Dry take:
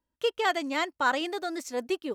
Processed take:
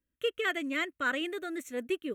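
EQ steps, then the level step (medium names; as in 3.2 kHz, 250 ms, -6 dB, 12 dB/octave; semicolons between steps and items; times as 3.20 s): static phaser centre 2.1 kHz, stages 4; 0.0 dB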